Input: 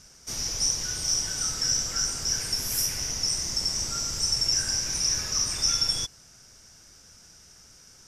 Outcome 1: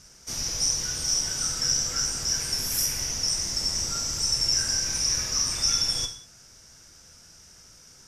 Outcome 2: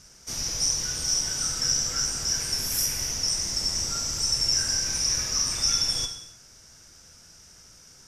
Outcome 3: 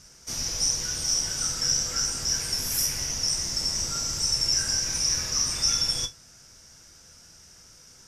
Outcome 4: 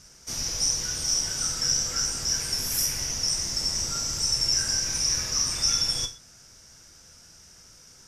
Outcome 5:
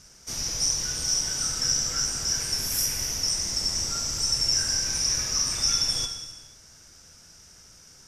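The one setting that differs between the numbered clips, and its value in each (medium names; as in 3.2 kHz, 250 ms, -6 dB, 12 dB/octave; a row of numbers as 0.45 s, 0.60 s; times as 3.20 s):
gated-style reverb, gate: 220 ms, 340 ms, 90 ms, 140 ms, 520 ms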